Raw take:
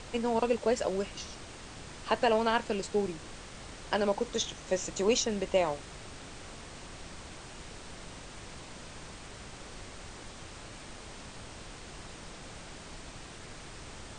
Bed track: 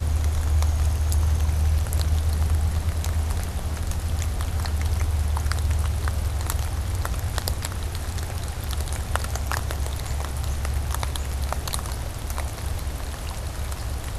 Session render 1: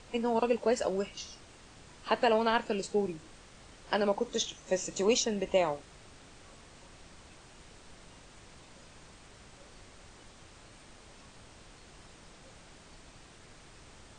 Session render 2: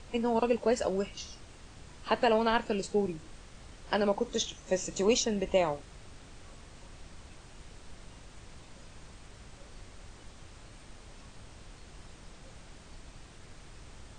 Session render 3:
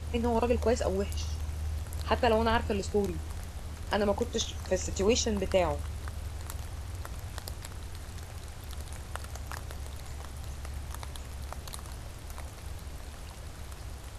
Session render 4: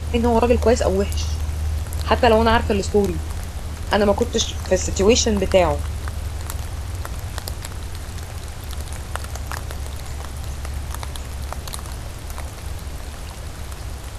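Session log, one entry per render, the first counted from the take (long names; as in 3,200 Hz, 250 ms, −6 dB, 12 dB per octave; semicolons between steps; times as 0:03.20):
noise reduction from a noise print 8 dB
low-shelf EQ 120 Hz +9 dB
mix in bed track −13.5 dB
level +11 dB; brickwall limiter −2 dBFS, peak gain reduction 1.5 dB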